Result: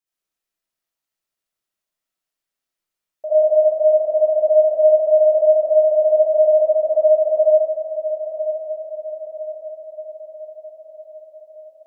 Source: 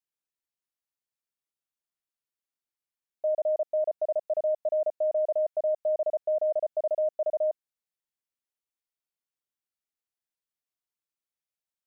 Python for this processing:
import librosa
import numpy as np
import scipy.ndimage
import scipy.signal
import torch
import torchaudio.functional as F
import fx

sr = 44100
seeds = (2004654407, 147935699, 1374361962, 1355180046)

y = fx.echo_diffused(x, sr, ms=995, feedback_pct=53, wet_db=-10.0)
y = fx.rev_freeverb(y, sr, rt60_s=0.87, hf_ratio=0.75, predelay_ms=25, drr_db=-8.0)